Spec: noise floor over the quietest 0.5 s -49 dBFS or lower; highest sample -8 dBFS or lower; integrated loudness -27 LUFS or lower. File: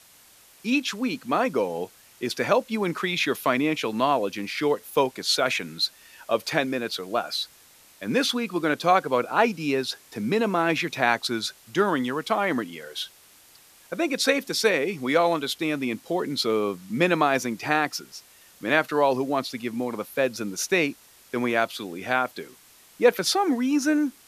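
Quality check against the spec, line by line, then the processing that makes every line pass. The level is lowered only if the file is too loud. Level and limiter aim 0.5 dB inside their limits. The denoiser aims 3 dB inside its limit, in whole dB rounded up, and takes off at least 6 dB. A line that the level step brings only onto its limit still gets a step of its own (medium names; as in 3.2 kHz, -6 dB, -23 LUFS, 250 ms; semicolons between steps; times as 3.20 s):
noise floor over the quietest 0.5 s -54 dBFS: pass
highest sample -5.0 dBFS: fail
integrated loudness -25.0 LUFS: fail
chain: trim -2.5 dB; peak limiter -8.5 dBFS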